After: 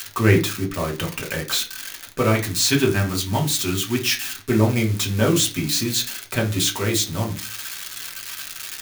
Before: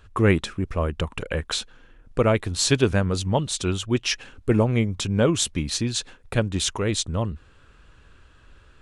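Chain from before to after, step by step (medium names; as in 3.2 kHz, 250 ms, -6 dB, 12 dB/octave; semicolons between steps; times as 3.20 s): zero-crossing glitches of -18.5 dBFS; 2.30–4.53 s: peaking EQ 510 Hz -12.5 dB 0.3 oct; reverberation RT60 0.30 s, pre-delay 3 ms, DRR -0.5 dB; trim -1.5 dB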